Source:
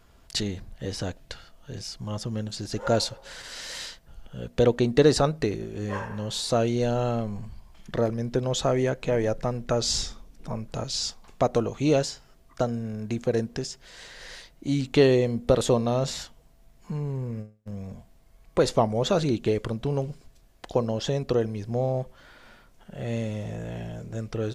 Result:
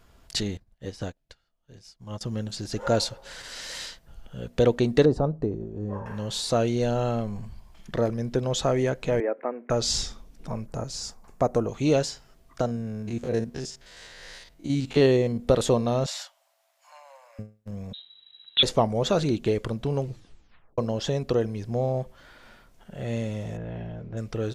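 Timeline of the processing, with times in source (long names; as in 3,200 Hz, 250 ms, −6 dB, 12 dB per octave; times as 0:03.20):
0:00.57–0:02.21: expander for the loud parts 2.5 to 1, over −44 dBFS
0:05.05–0:06.06: drawn EQ curve 240 Hz 0 dB, 960 Hz −5 dB, 2,100 Hz −23 dB
0:09.20–0:09.70: Chebyshev band-pass filter 260–2,300 Hz, order 4
0:10.66–0:11.69: parametric band 3,400 Hz −12.5 dB 1.2 octaves
0:12.61–0:15.40: spectrum averaged block by block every 50 ms
0:16.06–0:17.39: Chebyshev high-pass filter 540 Hz, order 10
0:17.93–0:18.63: voice inversion scrambler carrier 3,900 Hz
0:20.02: tape stop 0.76 s
0:23.57–0:24.17: high-frequency loss of the air 310 metres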